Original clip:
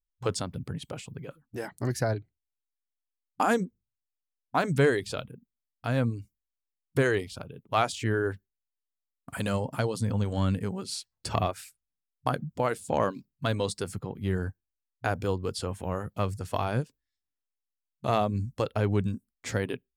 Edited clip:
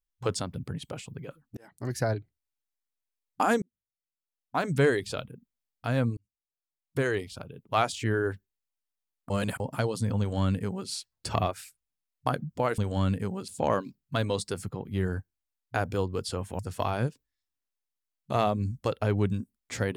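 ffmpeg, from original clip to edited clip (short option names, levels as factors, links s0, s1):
-filter_complex "[0:a]asplit=9[s0][s1][s2][s3][s4][s5][s6][s7][s8];[s0]atrim=end=1.57,asetpts=PTS-STARTPTS,afade=t=out:st=1.566:d=0.004:c=hsin[s9];[s1]atrim=start=1.57:end=3.62,asetpts=PTS-STARTPTS,afade=t=in:d=0.47,afade=t=out:st=2.046:d=0.004:c=hsin[s10];[s2]atrim=start=3.62:end=6.17,asetpts=PTS-STARTPTS,afade=t=in:d=1.28,afade=t=out:st=2.546:d=0.004:c=hsin[s11];[s3]atrim=start=6.17:end=9.302,asetpts=PTS-STARTPTS,afade=t=in:d=1.77:c=qsin[s12];[s4]atrim=start=9.298:end=9.602,asetpts=PTS-STARTPTS,areverse[s13];[s5]atrim=start=9.598:end=12.782[s14];[s6]atrim=start=10.188:end=10.892[s15];[s7]atrim=start=12.778:end=15.892[s16];[s8]atrim=start=16.328[s17];[s9][s10][s11][s12]concat=n=4:v=0:a=1[s18];[s18][s13]acrossfade=d=0.004:c1=hsin:c2=hsin[s19];[s19][s14]acrossfade=d=0.004:c1=hsin:c2=hsin[s20];[s20][s15]acrossfade=d=0.004:c1=hsin:c2=hsin[s21];[s21][s16]acrossfade=d=0.004:c1=hsin:c2=hsin[s22];[s22][s17]acrossfade=d=0.004:c1=hsin:c2=hsin"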